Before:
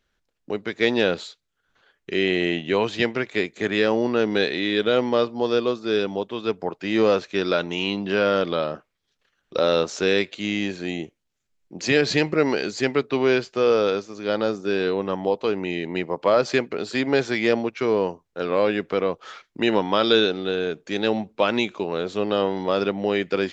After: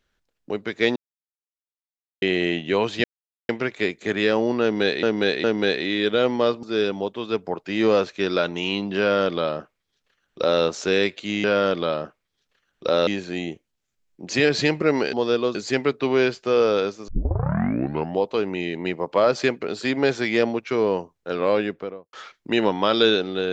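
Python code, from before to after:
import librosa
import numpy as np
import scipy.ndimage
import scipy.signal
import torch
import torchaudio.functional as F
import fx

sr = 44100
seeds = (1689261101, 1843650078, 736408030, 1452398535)

y = fx.studio_fade_out(x, sr, start_s=18.62, length_s=0.61)
y = fx.edit(y, sr, fx.silence(start_s=0.96, length_s=1.26),
    fx.insert_silence(at_s=3.04, length_s=0.45),
    fx.repeat(start_s=4.17, length_s=0.41, count=3),
    fx.move(start_s=5.36, length_s=0.42, to_s=12.65),
    fx.duplicate(start_s=8.14, length_s=1.63, to_s=10.59),
    fx.tape_start(start_s=14.18, length_s=1.12), tone=tone)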